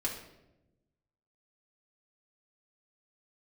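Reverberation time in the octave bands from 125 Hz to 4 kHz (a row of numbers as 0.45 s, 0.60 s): 1.6 s, 1.4 s, 1.1 s, 0.80 s, 0.70 s, 0.65 s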